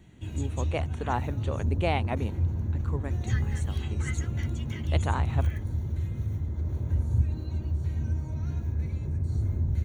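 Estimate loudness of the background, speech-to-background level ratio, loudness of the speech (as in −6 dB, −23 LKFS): −30.5 LKFS, −4.5 dB, −35.0 LKFS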